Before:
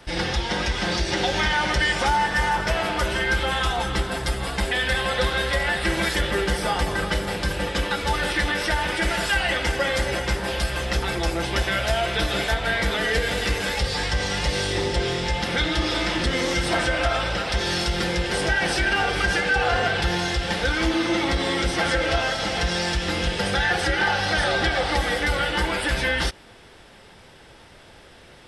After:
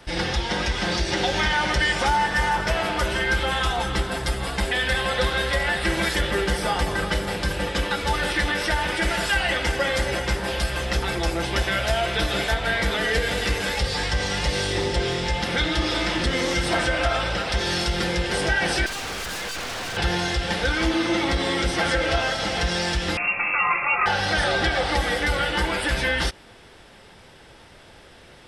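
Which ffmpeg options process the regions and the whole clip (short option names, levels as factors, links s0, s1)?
-filter_complex "[0:a]asettb=1/sr,asplit=3[s0][s1][s2];[s0]atrim=end=18.864[s3];[s1]atrim=start=18.86:end=19.97,asetpts=PTS-STARTPTS,afade=t=in:d=0.004:c=qsin,afade=t=out:st=1.106:d=0.004:c=qsin,aeval=exprs='(tanh(7.08*val(0)+0.25)-tanh(0.25))/7.08':c=same,aeval=exprs='0.0501*(abs(mod(val(0)/0.0501+3,4)-2)-1)':c=same[s4];[s2]atrim=start=19.966[s5];[s3][s4]acrossfade=d=0.004:c1=hsin:c2=qsin[s6];[s6][s5]acrossfade=d=0.004:c1=qsin:c2=hsin,asettb=1/sr,asplit=3[s7][s8][s9];[s7]atrim=end=23.174[s10];[s8]atrim=start=23.17:end=24.06,asetpts=PTS-STARTPTS,afade=t=in:d=0.004:c=qsin,afade=t=out:st=0.886:d=0.004:c=qsin,lowpass=f=2400:t=q:w=0.5098,lowpass=f=2400:t=q:w=0.6013,lowpass=f=2400:t=q:w=0.9,lowpass=f=2400:t=q:w=2.563,afreqshift=-2800,asplit=2[s11][s12];[s12]adelay=20,volume=0.282[s13];[s11][s13]amix=inputs=2:normalize=0,atrim=end_sample=39249[s14];[s9]atrim=start=24.056[s15];[s10][s14]acrossfade=d=0.004:c1=hsin:c2=qsin[s16];[s16][s15]acrossfade=d=0.004:c1=qsin:c2=hsin"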